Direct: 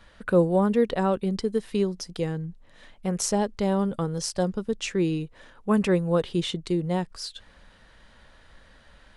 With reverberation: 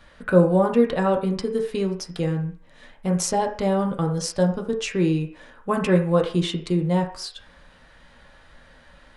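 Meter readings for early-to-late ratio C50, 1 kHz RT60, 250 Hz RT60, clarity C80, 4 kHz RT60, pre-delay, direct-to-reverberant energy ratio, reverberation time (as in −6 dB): 9.5 dB, 0.50 s, 0.40 s, 13.5 dB, 0.55 s, 3 ms, 1.5 dB, 0.45 s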